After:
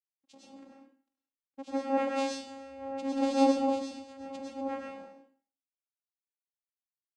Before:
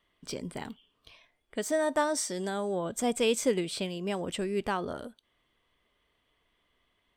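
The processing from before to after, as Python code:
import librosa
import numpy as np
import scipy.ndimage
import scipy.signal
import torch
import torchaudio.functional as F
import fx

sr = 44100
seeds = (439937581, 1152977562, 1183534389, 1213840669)

y = fx.quant_dither(x, sr, seeds[0], bits=8, dither='none')
y = fx.vocoder(y, sr, bands=4, carrier='saw', carrier_hz=271.0)
y = fx.rev_plate(y, sr, seeds[1], rt60_s=0.66, hf_ratio=0.95, predelay_ms=90, drr_db=-3.5)
y = fx.band_widen(y, sr, depth_pct=100)
y = y * librosa.db_to_amplitude(-5.5)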